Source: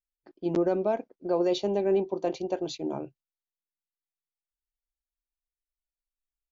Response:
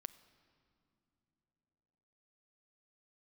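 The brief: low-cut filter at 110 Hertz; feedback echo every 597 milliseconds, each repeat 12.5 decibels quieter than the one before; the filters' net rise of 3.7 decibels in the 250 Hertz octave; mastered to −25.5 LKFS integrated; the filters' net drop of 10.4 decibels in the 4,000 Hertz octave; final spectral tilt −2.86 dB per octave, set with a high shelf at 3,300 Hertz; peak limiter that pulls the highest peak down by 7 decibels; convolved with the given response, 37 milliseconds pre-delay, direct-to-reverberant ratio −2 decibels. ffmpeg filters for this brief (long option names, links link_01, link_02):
-filter_complex "[0:a]highpass=110,equalizer=frequency=250:width_type=o:gain=7,highshelf=frequency=3300:gain=-4.5,equalizer=frequency=4000:width_type=o:gain=-9,alimiter=limit=-19.5dB:level=0:latency=1,aecho=1:1:597|1194|1791:0.237|0.0569|0.0137,asplit=2[link_01][link_02];[1:a]atrim=start_sample=2205,adelay=37[link_03];[link_02][link_03]afir=irnorm=-1:irlink=0,volume=7dB[link_04];[link_01][link_04]amix=inputs=2:normalize=0"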